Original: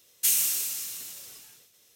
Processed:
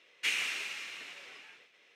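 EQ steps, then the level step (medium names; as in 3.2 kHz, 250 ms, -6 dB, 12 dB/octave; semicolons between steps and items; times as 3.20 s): high-pass 310 Hz 12 dB/octave; resonant low-pass 2.3 kHz, resonance Q 2.7; +2.5 dB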